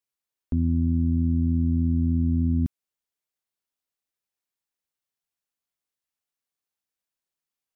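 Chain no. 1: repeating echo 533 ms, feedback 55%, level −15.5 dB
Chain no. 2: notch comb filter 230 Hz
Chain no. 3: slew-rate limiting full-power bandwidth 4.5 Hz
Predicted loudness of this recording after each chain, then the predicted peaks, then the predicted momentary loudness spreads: −24.5, −25.5, −30.0 LKFS; −16.5, −18.0, −20.5 dBFS; 17, 4, 4 LU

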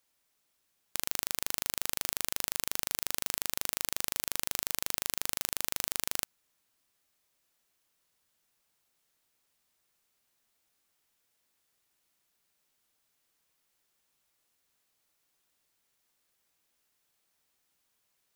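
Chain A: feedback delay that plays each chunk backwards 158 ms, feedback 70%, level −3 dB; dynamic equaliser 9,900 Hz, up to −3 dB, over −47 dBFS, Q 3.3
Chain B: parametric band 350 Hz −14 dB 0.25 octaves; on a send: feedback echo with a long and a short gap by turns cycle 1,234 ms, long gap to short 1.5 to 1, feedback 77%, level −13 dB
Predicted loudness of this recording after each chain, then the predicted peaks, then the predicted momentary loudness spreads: −30.0, −34.0 LKFS; −3.0, −3.0 dBFS; 9, 20 LU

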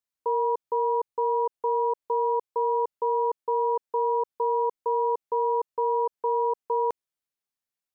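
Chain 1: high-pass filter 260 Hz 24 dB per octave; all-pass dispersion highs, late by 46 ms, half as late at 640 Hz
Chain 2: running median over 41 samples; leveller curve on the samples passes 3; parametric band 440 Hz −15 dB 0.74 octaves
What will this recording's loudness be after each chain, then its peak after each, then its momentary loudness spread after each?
−26.5, −34.5 LKFS; −18.0, −22.5 dBFS; 1, 1 LU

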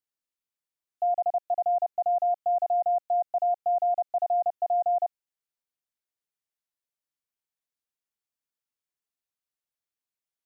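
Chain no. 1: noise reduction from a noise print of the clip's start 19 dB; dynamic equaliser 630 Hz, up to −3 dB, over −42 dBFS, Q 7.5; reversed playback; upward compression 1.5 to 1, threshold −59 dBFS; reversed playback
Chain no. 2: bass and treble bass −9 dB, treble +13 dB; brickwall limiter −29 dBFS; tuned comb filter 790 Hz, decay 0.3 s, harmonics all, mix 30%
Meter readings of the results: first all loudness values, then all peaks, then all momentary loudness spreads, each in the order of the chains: −27.5, −38.5 LKFS; −20.5, −32.0 dBFS; 3, 2 LU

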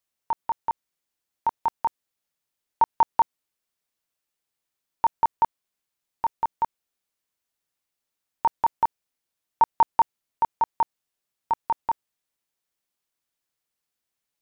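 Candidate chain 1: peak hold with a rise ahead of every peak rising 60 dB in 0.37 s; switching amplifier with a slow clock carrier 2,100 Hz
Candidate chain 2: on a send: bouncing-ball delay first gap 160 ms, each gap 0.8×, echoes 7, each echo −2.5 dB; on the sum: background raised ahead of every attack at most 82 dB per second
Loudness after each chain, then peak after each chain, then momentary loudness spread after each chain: −27.5, −24.0 LKFS; −9.5, −9.0 dBFS; 6, 15 LU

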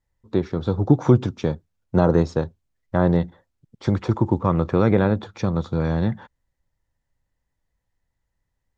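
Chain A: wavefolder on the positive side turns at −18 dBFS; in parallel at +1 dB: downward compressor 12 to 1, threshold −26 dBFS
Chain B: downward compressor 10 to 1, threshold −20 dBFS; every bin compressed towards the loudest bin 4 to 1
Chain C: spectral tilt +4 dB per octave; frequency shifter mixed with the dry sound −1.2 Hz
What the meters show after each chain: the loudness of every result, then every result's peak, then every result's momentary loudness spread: −21.5, −31.5, −30.5 LKFS; −1.0, −8.5, −11.0 dBFS; 7, 8, 11 LU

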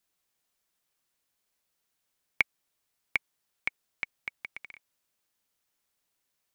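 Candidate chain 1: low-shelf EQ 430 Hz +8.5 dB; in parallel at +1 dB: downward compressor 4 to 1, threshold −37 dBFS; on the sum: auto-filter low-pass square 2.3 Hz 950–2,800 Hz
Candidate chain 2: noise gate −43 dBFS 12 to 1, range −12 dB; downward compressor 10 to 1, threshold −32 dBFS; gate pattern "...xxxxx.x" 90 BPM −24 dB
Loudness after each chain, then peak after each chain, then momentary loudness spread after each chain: −29.0, −43.0 LKFS; −1.0, −10.5 dBFS; 12, 11 LU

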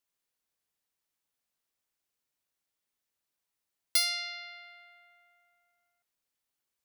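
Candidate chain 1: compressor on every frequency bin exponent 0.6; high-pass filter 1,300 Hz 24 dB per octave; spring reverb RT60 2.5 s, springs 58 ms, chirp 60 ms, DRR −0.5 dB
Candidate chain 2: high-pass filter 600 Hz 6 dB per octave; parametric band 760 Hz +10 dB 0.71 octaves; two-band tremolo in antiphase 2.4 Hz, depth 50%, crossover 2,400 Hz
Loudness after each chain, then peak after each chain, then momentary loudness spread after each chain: −30.0, −31.0 LKFS; −13.0, −14.0 dBFS; 21, 20 LU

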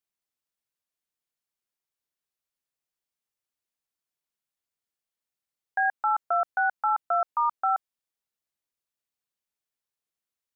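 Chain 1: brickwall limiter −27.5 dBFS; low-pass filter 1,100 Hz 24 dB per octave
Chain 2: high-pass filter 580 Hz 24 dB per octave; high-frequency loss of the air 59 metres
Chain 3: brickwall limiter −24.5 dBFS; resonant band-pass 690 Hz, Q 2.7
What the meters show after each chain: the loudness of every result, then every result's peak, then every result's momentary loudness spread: −40.0, −27.0, −39.0 LKFS; −30.0, −17.5, −28.5 dBFS; 4, 3, 4 LU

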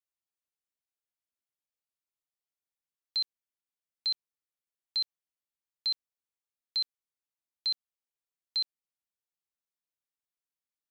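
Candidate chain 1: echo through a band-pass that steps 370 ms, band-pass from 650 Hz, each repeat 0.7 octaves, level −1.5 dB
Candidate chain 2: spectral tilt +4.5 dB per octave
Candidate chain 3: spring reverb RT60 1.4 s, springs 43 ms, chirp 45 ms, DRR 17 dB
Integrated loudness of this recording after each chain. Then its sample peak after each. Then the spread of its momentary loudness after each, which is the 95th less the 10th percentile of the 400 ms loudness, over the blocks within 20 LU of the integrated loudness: −34.0, −24.0, −33.0 LKFS; −24.5, −15.5, −24.5 dBFS; 15, 4, 4 LU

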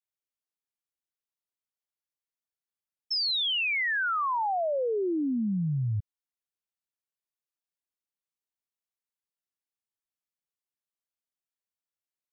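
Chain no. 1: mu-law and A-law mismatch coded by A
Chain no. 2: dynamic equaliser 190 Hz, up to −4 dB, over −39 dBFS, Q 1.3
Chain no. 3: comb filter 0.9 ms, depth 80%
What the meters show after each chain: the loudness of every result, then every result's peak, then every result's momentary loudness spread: −28.5, −28.0, −25.5 LKFS; −25.5, −25.0, −19.5 dBFS; 6, 8, 10 LU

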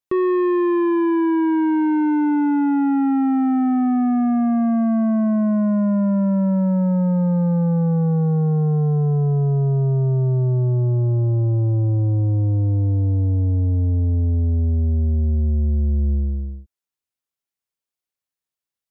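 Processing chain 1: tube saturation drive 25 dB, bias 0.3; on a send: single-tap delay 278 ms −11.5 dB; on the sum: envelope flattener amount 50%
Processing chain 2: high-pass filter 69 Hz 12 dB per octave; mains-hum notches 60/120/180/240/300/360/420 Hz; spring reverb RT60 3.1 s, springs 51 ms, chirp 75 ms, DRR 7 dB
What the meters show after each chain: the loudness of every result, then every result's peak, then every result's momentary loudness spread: −25.5, −19.0 LKFS; −20.5, −8.5 dBFS; 2, 5 LU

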